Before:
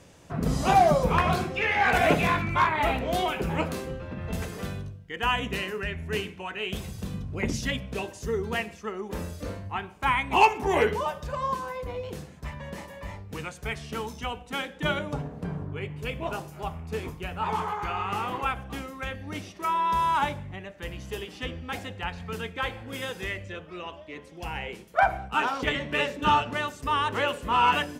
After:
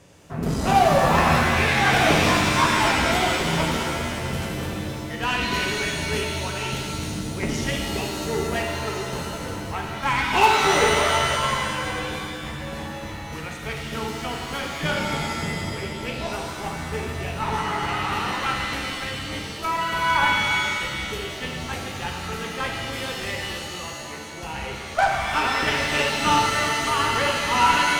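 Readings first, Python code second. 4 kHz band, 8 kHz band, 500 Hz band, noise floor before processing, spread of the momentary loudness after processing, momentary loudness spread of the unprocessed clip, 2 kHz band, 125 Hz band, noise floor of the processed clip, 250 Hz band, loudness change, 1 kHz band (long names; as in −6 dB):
+9.5 dB, +13.0 dB, +3.5 dB, −47 dBFS, 13 LU, 16 LU, +7.0 dB, +4.5 dB, −34 dBFS, +5.0 dB, +5.0 dB, +3.5 dB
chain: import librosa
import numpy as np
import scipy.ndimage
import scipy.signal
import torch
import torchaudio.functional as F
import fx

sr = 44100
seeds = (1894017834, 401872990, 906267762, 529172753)

y = fx.cheby_harmonics(x, sr, harmonics=(8,), levels_db=(-23,), full_scale_db=-9.5)
y = fx.rev_shimmer(y, sr, seeds[0], rt60_s=2.2, semitones=7, shimmer_db=-2, drr_db=0.5)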